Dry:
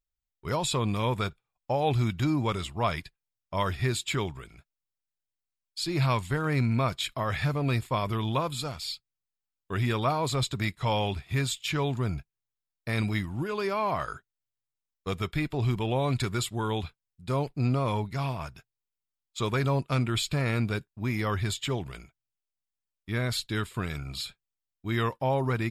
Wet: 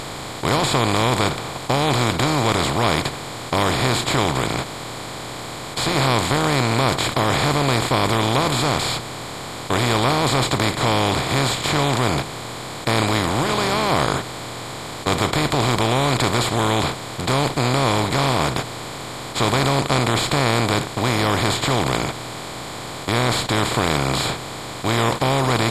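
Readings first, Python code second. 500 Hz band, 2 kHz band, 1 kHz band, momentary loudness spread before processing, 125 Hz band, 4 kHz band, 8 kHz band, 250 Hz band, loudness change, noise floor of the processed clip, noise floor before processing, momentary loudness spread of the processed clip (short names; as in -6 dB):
+10.0 dB, +12.5 dB, +12.0 dB, 10 LU, +6.5 dB, +13.5 dB, +13.5 dB, +9.0 dB, +9.5 dB, -32 dBFS, under -85 dBFS, 12 LU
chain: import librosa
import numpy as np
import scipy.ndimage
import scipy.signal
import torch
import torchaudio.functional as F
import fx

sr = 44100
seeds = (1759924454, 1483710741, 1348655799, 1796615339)

y = fx.bin_compress(x, sr, power=0.2)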